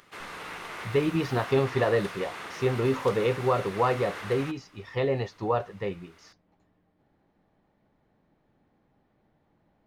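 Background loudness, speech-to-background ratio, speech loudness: -39.0 LUFS, 11.0 dB, -28.0 LUFS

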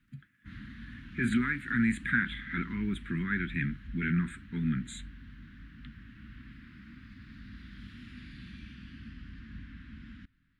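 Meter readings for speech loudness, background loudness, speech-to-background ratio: -31.5 LUFS, -48.5 LUFS, 17.0 dB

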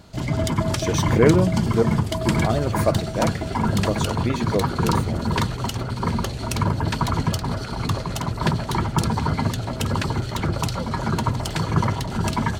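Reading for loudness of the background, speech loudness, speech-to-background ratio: -24.0 LUFS, -25.0 LUFS, -1.0 dB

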